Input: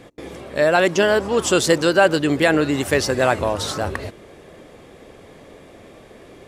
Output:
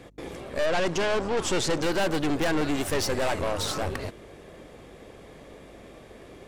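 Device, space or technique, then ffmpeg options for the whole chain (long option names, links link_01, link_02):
valve amplifier with mains hum: -filter_complex "[0:a]aeval=exprs='(tanh(14.1*val(0)+0.65)-tanh(0.65))/14.1':channel_layout=same,aeval=exprs='val(0)+0.00158*(sin(2*PI*50*n/s)+sin(2*PI*2*50*n/s)/2+sin(2*PI*3*50*n/s)/3+sin(2*PI*4*50*n/s)/4+sin(2*PI*5*50*n/s)/5)':channel_layout=same,asettb=1/sr,asplit=3[link_01][link_02][link_03];[link_01]atrim=end=0.664[link_04];[link_02]atrim=start=0.66:end=1.83,asetpts=PTS-STARTPTS,afade=type=in:duration=0.004:curve=qsin,afade=type=out:start_time=1.166:duration=0.004:curve=qsin,lowpass=7800[link_05];[link_03]atrim=start=1.826[link_06];[link_04][link_05]acrossfade=duration=0.004:curve1=hsin:curve2=qsin[link_07];[link_07][link_06]acrossfade=duration=0.004:curve1=qsin:curve2=hsin"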